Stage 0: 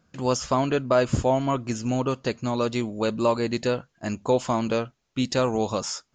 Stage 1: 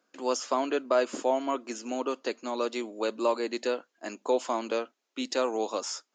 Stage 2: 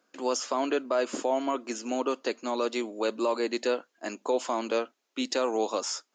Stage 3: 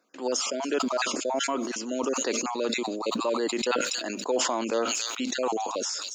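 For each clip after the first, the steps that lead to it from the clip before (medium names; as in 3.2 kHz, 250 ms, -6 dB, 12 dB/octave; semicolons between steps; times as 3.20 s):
steep high-pass 270 Hz 36 dB/octave; trim -4 dB
peak limiter -19.5 dBFS, peak gain reduction 6 dB; trim +2.5 dB
random holes in the spectrogram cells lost 24%; feedback echo behind a high-pass 279 ms, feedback 31%, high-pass 5.3 kHz, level -9 dB; decay stretcher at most 26 dB/s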